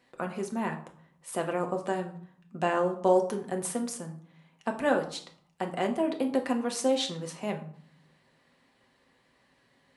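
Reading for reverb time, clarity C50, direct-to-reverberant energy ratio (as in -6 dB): 0.55 s, 11.5 dB, 3.0 dB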